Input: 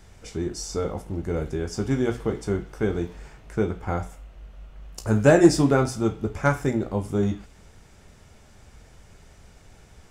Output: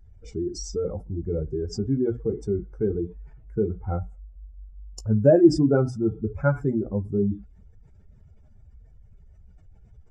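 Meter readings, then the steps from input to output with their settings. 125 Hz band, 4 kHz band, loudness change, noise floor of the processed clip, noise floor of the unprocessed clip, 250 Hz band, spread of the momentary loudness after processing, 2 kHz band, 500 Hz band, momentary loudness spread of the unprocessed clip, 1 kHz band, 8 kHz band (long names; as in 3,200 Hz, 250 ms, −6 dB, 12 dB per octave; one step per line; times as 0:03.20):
0.0 dB, −5.0 dB, −0.5 dB, −52 dBFS, −52 dBFS, 0.0 dB, 15 LU, −10.0 dB, 0.0 dB, 15 LU, −8.0 dB, can't be measured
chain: expanding power law on the bin magnitudes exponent 2.1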